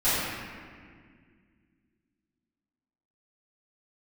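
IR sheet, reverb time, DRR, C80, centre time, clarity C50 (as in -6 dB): 2.0 s, -17.5 dB, -1.5 dB, 0.141 s, -4.0 dB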